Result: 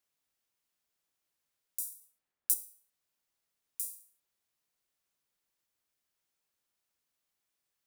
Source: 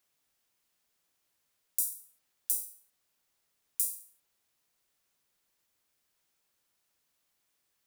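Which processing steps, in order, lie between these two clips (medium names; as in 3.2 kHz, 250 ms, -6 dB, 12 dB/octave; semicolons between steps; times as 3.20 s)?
2.00–2.54 s: three bands expanded up and down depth 100%; trim -7 dB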